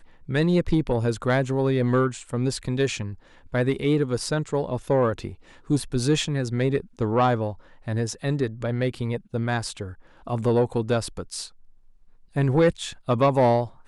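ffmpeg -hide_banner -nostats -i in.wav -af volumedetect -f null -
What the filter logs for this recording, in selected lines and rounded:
mean_volume: -24.4 dB
max_volume: -11.6 dB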